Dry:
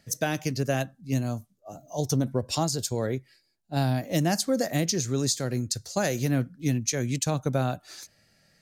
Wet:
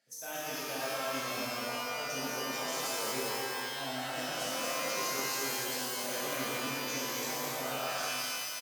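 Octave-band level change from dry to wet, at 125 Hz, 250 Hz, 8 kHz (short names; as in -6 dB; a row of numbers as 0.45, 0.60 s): -23.0, -14.0, -4.5 dB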